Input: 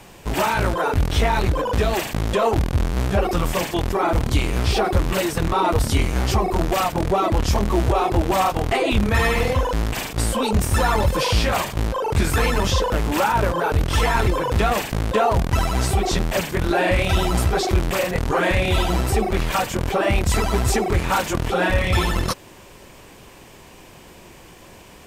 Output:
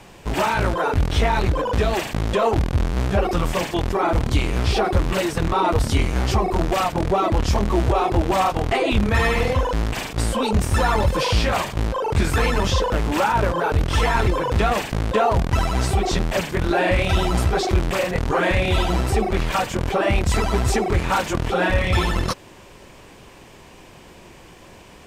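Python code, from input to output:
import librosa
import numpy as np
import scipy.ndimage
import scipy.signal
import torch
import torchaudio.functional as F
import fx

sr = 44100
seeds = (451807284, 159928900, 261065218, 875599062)

y = fx.high_shelf(x, sr, hz=11000.0, db=-11.5)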